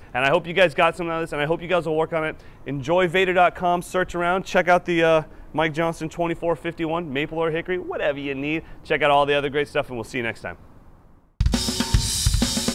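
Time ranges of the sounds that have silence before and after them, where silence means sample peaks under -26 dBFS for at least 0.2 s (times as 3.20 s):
2.68–5.22 s
5.55–8.59 s
8.90–10.52 s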